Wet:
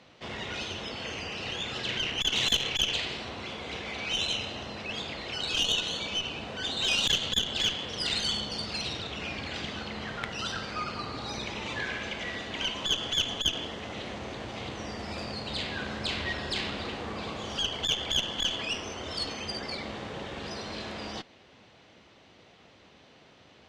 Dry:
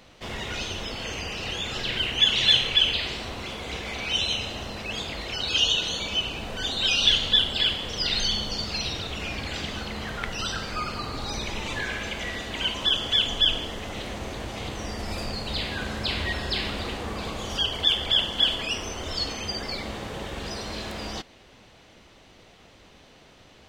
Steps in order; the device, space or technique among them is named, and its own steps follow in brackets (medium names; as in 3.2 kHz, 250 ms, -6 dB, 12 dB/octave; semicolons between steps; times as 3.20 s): valve radio (band-pass 91–5500 Hz; valve stage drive 16 dB, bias 0.75; transformer saturation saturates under 450 Hz); trim +1.5 dB